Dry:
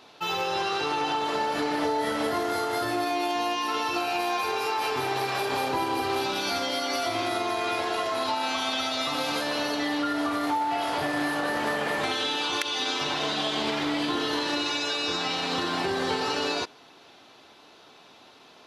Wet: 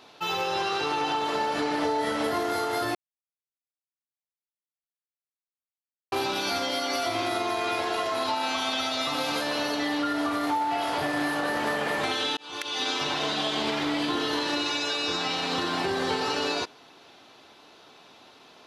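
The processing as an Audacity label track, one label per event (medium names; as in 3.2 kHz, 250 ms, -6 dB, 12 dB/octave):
1.500000	2.240000	low-pass 11 kHz 24 dB/octave
2.950000	6.120000	mute
12.370000	12.820000	fade in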